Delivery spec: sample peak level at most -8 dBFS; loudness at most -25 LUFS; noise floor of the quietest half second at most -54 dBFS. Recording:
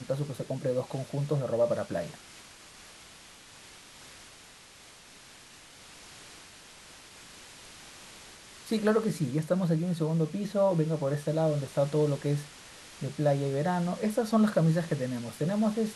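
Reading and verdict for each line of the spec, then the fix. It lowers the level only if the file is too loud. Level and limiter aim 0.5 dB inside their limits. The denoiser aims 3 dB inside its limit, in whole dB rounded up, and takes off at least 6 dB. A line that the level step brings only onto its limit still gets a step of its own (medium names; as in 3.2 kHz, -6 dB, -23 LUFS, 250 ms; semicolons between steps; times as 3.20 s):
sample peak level -13.5 dBFS: pass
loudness -29.5 LUFS: pass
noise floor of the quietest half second -53 dBFS: fail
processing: noise reduction 6 dB, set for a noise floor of -53 dBFS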